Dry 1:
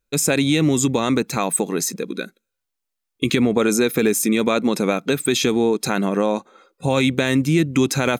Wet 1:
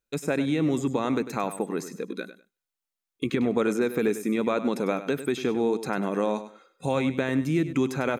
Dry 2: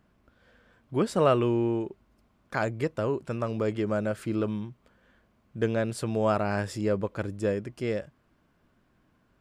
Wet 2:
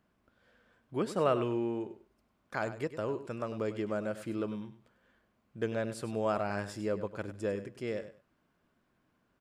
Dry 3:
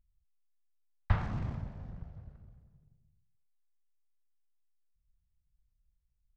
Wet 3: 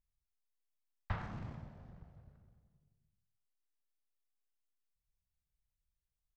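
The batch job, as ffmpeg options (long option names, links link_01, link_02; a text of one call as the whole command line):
ffmpeg -i in.wav -filter_complex "[0:a]acrossover=split=2100[link_01][link_02];[link_01]lowshelf=frequency=130:gain=-8[link_03];[link_02]acompressor=threshold=-38dB:ratio=5[link_04];[link_03][link_04]amix=inputs=2:normalize=0,aecho=1:1:99|198:0.237|0.0474,volume=-5.5dB" out.wav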